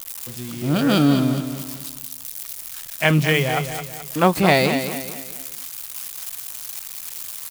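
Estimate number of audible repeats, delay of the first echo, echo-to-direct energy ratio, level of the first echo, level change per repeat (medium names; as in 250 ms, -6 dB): 4, 215 ms, -8.0 dB, -9.0 dB, -8.0 dB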